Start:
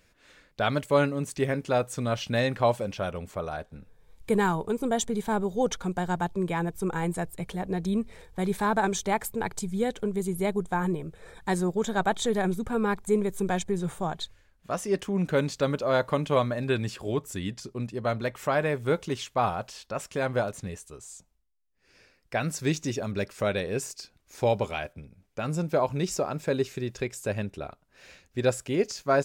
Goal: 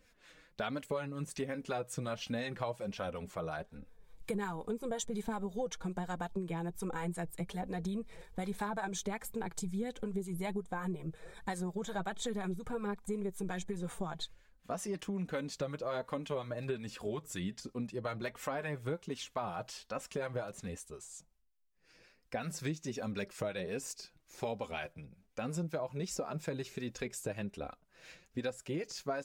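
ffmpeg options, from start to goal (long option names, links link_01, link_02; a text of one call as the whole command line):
ffmpeg -i in.wav -filter_complex "[0:a]acrossover=split=740[link_01][link_02];[link_01]aeval=exprs='val(0)*(1-0.5/2+0.5/2*cos(2*PI*5.5*n/s))':channel_layout=same[link_03];[link_02]aeval=exprs='val(0)*(1-0.5/2-0.5/2*cos(2*PI*5.5*n/s))':channel_layout=same[link_04];[link_03][link_04]amix=inputs=2:normalize=0,flanger=delay=3.8:depth=2.6:regen=26:speed=1.3:shape=sinusoidal,acompressor=threshold=-36dB:ratio=6,volume=2dB" out.wav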